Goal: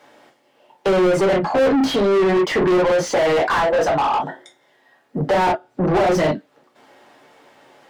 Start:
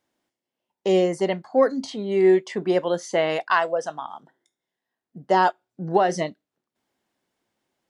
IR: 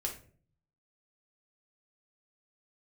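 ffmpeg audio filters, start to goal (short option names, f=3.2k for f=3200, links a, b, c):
-filter_complex "[0:a]acrossover=split=330[a][b];[b]acompressor=threshold=-35dB:ratio=2.5[c];[a][c]amix=inputs=2:normalize=0[d];[1:a]atrim=start_sample=2205,atrim=end_sample=4410,asetrate=66150,aresample=44100[e];[d][e]afir=irnorm=-1:irlink=0,asplit=2[f][g];[g]highpass=f=720:p=1,volume=36dB,asoftclip=type=tanh:threshold=-14.5dB[h];[f][h]amix=inputs=2:normalize=0,lowpass=f=1.4k:p=1,volume=-6dB,volume=5.5dB"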